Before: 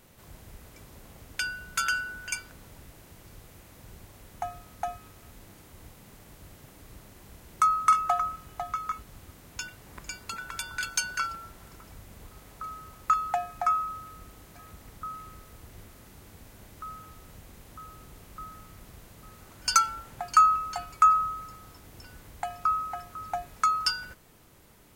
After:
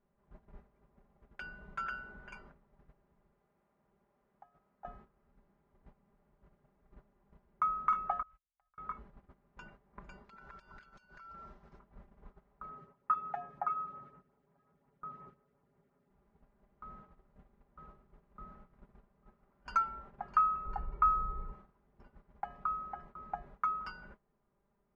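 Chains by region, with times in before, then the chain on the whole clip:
0:03.32–0:04.85: high-pass filter 230 Hz 6 dB per octave + downward compressor 16 to 1, threshold −42 dBFS
0:08.22–0:08.78: noise gate −41 dBFS, range −25 dB + downward compressor 12 to 1, threshold −42 dBFS + guitar amp tone stack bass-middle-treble 10-0-10
0:10.24–0:11.79: parametric band 5,400 Hz +12 dB 1.3 octaves + downward compressor 16 to 1, threshold −39 dBFS
0:12.69–0:16.10: high-pass filter 110 Hz + comb filter 7.2 ms, depth 48% + auto-filter notch sine 5.6 Hz 860–4,800 Hz
0:20.65–0:21.53: spectral tilt −2.5 dB per octave + comb filter 2.2 ms, depth 48%
whole clip: noise gate −46 dBFS, range −15 dB; Chebyshev low-pass filter 1,100 Hz, order 2; comb filter 5 ms, depth 75%; level −5.5 dB

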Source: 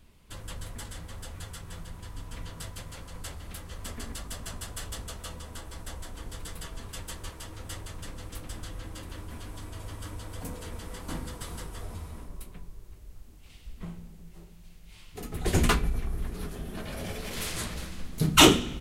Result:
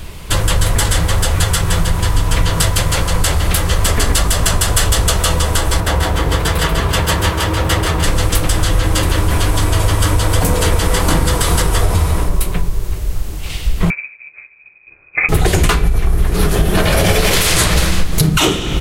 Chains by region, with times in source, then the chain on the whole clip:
0:05.80–0:08.04: high-pass filter 55 Hz + parametric band 8,800 Hz −10 dB 1.9 octaves + single-tap delay 136 ms −6 dB
0:13.90–0:15.29: high-pass filter 46 Hz 6 dB per octave + voice inversion scrambler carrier 2,500 Hz + expander for the loud parts 2.5 to 1, over −53 dBFS
whole clip: parametric band 240 Hz −12 dB 0.31 octaves; downward compressor 12 to 1, threshold −36 dBFS; boost into a limiter +29.5 dB; level −1 dB

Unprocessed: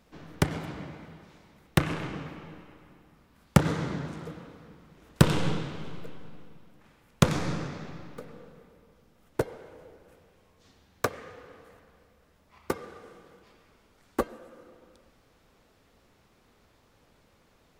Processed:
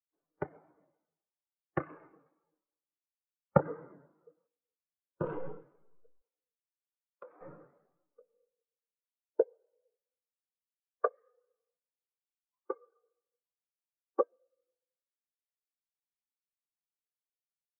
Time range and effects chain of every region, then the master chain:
0:04.47–0:05.25: parametric band 2,000 Hz −11.5 dB 0.33 octaves + micro pitch shift up and down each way 27 cents
0:06.21–0:07.41: high-pass filter 280 Hz + downward compressor 1.5 to 1, threshold −44 dBFS
whole clip: three-way crossover with the lows and the highs turned down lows −15 dB, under 380 Hz, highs −23 dB, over 2,700 Hz; every bin expanded away from the loudest bin 2.5 to 1

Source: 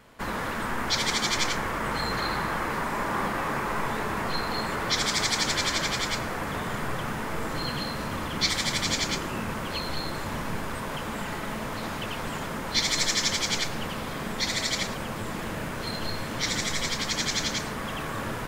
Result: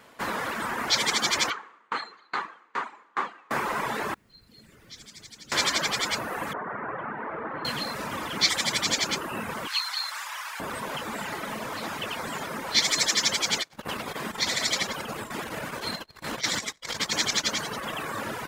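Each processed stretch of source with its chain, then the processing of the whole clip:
0:01.50–0:03.51: loudspeaker in its box 310–6,500 Hz, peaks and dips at 600 Hz −8 dB, 1,200 Hz +5 dB, 5,300 Hz −9 dB + tremolo with a ramp in dB decaying 2.4 Hz, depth 29 dB
0:04.14–0:05.52: guitar amp tone stack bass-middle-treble 10-0-1 + log-companded quantiser 8 bits
0:06.53–0:07.65: low-pass filter 1,800 Hz 24 dB per octave + low-shelf EQ 130 Hz −11.5 dB
0:09.67–0:10.60: high-pass filter 960 Hz 24 dB per octave + dynamic equaliser 5,200 Hz, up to +5 dB, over −45 dBFS, Q 0.79 + log-companded quantiser 8 bits
0:13.61–0:17.99: echo with shifted repeats 90 ms, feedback 61%, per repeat −53 Hz, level −8 dB + saturating transformer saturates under 240 Hz
whole clip: reverb reduction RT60 0.93 s; high-pass filter 300 Hz 6 dB per octave; level +3.5 dB

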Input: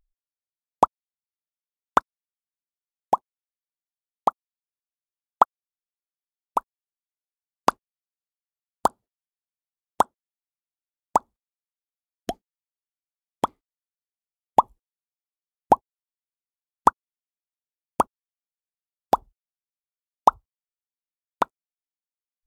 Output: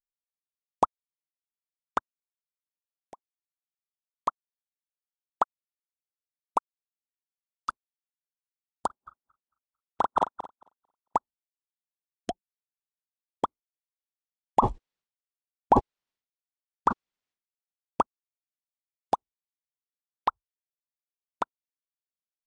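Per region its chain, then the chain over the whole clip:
0:01.98–0:04.28: two-band tremolo in antiphase 3.2 Hz, crossover 830 Hz + downward compressor 12 to 1, threshold −29 dBFS
0:06.58–0:07.69: resonant band-pass 5,300 Hz, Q 2 + output level in coarse steps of 13 dB
0:08.86–0:11.16: feedback delay that plays each chunk backwards 112 ms, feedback 63%, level −4.5 dB + low-pass filter 3,600 Hz + double-tracking delay 39 ms −6 dB
0:12.30–0:13.44: spectral envelope exaggerated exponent 2 + comb filter 5.6 ms, depth 81%
0:14.59–0:18.01: low-pass filter 4,700 Hz + level that may fall only so fast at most 120 dB per second
0:19.14–0:20.28: meter weighting curve D + downward compressor 2 to 1, threshold −28 dBFS + linearly interpolated sample-rate reduction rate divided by 6×
whole clip: Butterworth low-pass 10,000 Hz 96 dB per octave; brickwall limiter −13.5 dBFS; expander for the loud parts 2.5 to 1, over −44 dBFS; level +5.5 dB

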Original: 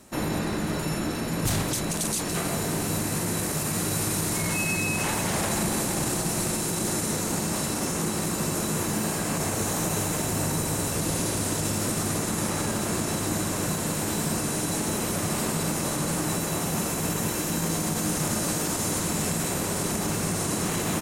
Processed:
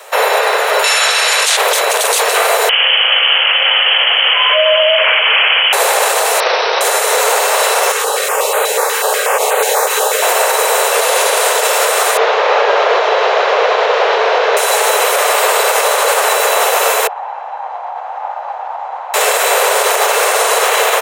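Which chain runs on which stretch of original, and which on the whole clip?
0:00.84–0:01.57: meter weighting curve ITU-R 468 + upward compression, threshold −26 dBFS
0:02.69–0:05.73: low-shelf EQ 390 Hz −5 dB + voice inversion scrambler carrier 3,200 Hz
0:06.40–0:06.81: linear-phase brick-wall low-pass 5,800 Hz + highs frequency-modulated by the lows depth 0.13 ms
0:07.92–0:10.22: notch comb filter 340 Hz + notch on a step sequencer 8.2 Hz 660–5,400 Hz
0:12.17–0:14.57: linear delta modulator 32 kbit/s, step −33.5 dBFS + spectral tilt −2.5 dB per octave
0:17.07–0:19.14: pair of resonant band-passes 420 Hz, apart 1.9 octaves + high-frequency loss of the air 140 metres
whole clip: Butterworth high-pass 430 Hz 96 dB per octave; flat-topped bell 7,600 Hz −9 dB; boost into a limiter +23 dB; level −1 dB

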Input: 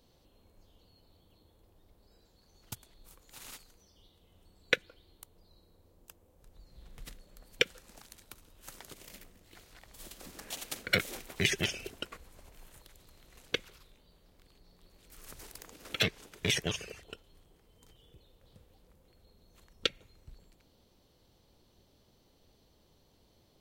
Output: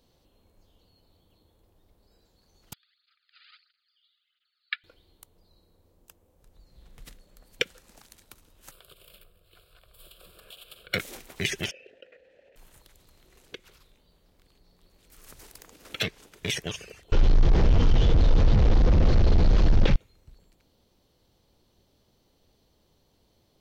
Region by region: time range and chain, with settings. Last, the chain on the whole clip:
0:02.73–0:04.84: linear-phase brick-wall band-pass 1,200–5,000 Hz + through-zero flanger with one copy inverted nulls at 1.5 Hz, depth 2 ms
0:08.71–0:10.94: dynamic equaliser 3,200 Hz, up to +7 dB, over −60 dBFS, Q 2.5 + downward compressor 2.5 to 1, threshold −44 dBFS + phaser with its sweep stopped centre 1,300 Hz, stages 8
0:11.71–0:12.56: formant filter e + high-frequency loss of the air 79 metres + envelope flattener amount 50%
0:13.22–0:13.65: parametric band 380 Hz +7.5 dB 0.37 octaves + downward compressor 1.5 to 1, threshold −55 dBFS
0:17.12–0:19.96: linear delta modulator 32 kbit/s, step −26 dBFS + spectral tilt −3.5 dB per octave + envelope flattener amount 50%
whole clip: no processing

